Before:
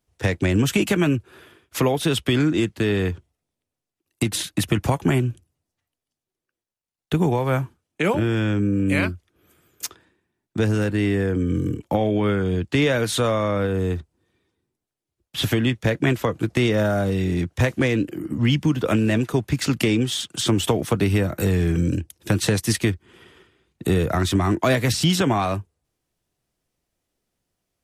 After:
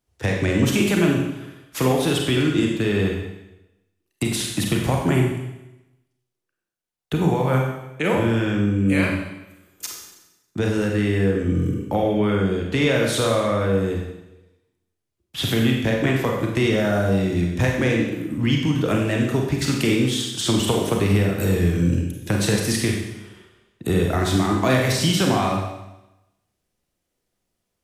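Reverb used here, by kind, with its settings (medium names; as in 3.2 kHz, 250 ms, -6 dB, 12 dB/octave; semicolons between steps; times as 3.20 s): Schroeder reverb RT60 0.94 s, combs from 31 ms, DRR 0 dB; trim -2 dB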